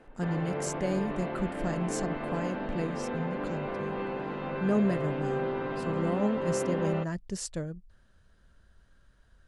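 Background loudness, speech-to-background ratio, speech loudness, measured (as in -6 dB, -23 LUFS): -34.0 LUFS, 0.5 dB, -33.5 LUFS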